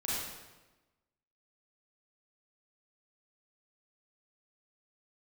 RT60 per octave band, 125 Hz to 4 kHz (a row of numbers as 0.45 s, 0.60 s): 1.2 s, 1.3 s, 1.2 s, 1.1 s, 1.0 s, 0.95 s